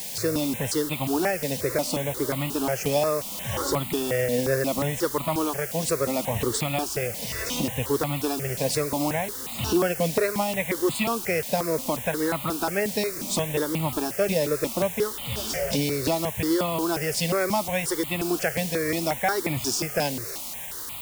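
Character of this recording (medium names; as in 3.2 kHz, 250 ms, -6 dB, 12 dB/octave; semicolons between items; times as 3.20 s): a quantiser's noise floor 6-bit, dither triangular; notches that jump at a steady rate 5.6 Hz 350–1600 Hz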